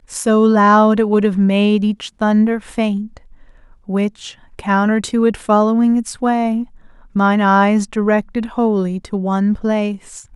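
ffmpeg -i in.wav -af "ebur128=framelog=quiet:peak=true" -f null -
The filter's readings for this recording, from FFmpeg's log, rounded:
Integrated loudness:
  I:         -15.7 LUFS
  Threshold: -26.2 LUFS
Loudness range:
  LRA:         4.4 LU
  Threshold: -36.8 LUFS
  LRA low:   -19.1 LUFS
  LRA high:  -14.8 LUFS
True peak:
  Peak:       -1.3 dBFS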